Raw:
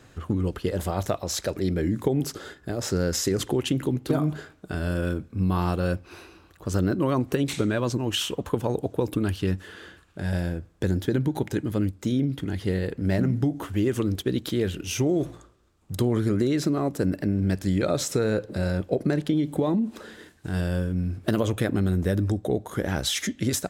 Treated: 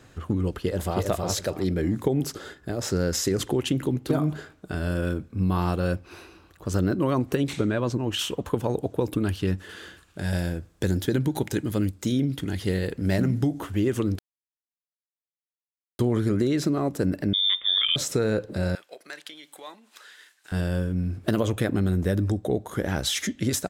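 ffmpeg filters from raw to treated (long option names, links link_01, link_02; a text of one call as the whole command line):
ffmpeg -i in.wav -filter_complex "[0:a]asplit=2[link_01][link_02];[link_02]afade=type=in:start_time=0.58:duration=0.01,afade=type=out:start_time=1.03:duration=0.01,aecho=0:1:320|640|960|1280:0.707946|0.176986|0.0442466|0.0110617[link_03];[link_01][link_03]amix=inputs=2:normalize=0,asettb=1/sr,asplit=3[link_04][link_05][link_06];[link_04]atrim=end=7.484[link_07];[link_05]atrim=start=7.48:end=8.19,asetpts=PTS-STARTPTS,afade=type=in:duration=0.004:curve=qsin,afade=type=out:start_time=0.706:duration=0.004:curve=qsin,highshelf=frequency=3700:gain=-7[link_08];[link_06]atrim=start=8.186[link_09];[link_07][link_08]acrossfade=duration=0.004:curve1=hsin:curve2=qsin[link_10];[link_10][link_09]acrossfade=duration=0.004:curve1=qsin:curve2=hsin,asettb=1/sr,asplit=3[link_11][link_12][link_13];[link_11]atrim=end=9.694[link_14];[link_12]atrim=start=9.69:end=13.6,asetpts=PTS-STARTPTS,afade=type=in:duration=0.004:curve=qsin,afade=type=out:start_time=3.906:duration=0.004:curve=qsin,highshelf=frequency=3200:gain=7.5[link_15];[link_13]atrim=start=13.596[link_16];[link_14][link_15]acrossfade=duration=0.004:curve1=hsin:curve2=qsin[link_17];[link_17][link_16]acrossfade=duration=0.004:curve1=qsin:curve2=hsin,asettb=1/sr,asplit=3[link_18][link_19][link_20];[link_18]atrim=end=17.334[link_21];[link_19]atrim=start=17.33:end=17.96,asetpts=PTS-STARTPTS,afade=type=in:duration=0.004:curve=qsin,afade=type=out:start_time=0.626:duration=0.004:curve=qsin,lowpass=frequency=3100:width_type=q:width=0.5098,lowpass=frequency=3100:width_type=q:width=0.6013,lowpass=frequency=3100:width_type=q:width=0.9,lowpass=frequency=3100:width_type=q:width=2.563,afreqshift=-3700[link_22];[link_20]atrim=start=17.956[link_23];[link_21][link_22]acrossfade=duration=0.004:curve1=hsin:curve2=qsin[link_24];[link_24][link_23]acrossfade=duration=0.004:curve1=qsin:curve2=hsin,asettb=1/sr,asplit=3[link_25][link_26][link_27];[link_25]atrim=end=18.754[link_28];[link_26]atrim=start=18.75:end=20.52,asetpts=PTS-STARTPTS,afade=type=in:duration=0.004:curve=qsin,afade=type=out:start_time=1.766:duration=0.004:curve=qsin,highpass=1500[link_29];[link_27]atrim=start=20.516[link_30];[link_28][link_29]acrossfade=duration=0.004:curve1=hsin:curve2=qsin[link_31];[link_31][link_30]acrossfade=duration=0.004:curve1=qsin:curve2=hsin,asplit=3[link_32][link_33][link_34];[link_32]atrim=end=14.19,asetpts=PTS-STARTPTS,afade=type=out:start_time=14.186:duration=0.004:curve=hsin[link_35];[link_33]atrim=start=14.19:end=15.99,asetpts=PTS-STARTPTS,volume=0[link_36];[link_34]atrim=start=15.99,asetpts=PTS-STARTPTS,afade=type=in:duration=0.004:curve=hsin[link_37];[link_35][link_36][link_37]concat=n=3:v=0:a=1" out.wav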